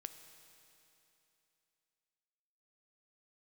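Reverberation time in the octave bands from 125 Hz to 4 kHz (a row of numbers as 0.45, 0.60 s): 3.0, 3.0, 3.0, 3.0, 3.0, 3.0 s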